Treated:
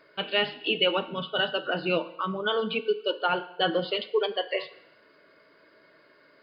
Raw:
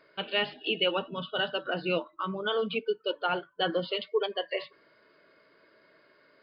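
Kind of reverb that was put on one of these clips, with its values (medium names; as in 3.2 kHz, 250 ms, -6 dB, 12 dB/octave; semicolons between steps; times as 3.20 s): FDN reverb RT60 0.86 s, low-frequency decay 0.75×, high-frequency decay 1×, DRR 12 dB; trim +3 dB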